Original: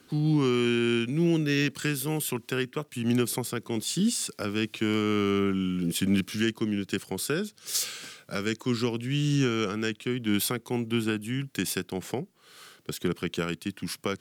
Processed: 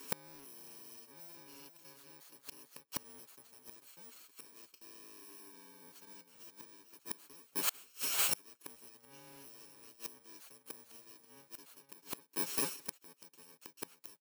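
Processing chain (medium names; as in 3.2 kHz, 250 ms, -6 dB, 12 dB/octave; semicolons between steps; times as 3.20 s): bit-reversed sample order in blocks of 64 samples; high-pass 340 Hz 12 dB/octave; comb 7.2 ms, depth 60%; wavefolder -19.5 dBFS; delay 443 ms -9.5 dB; inverted gate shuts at -25 dBFS, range -34 dB; trim +6 dB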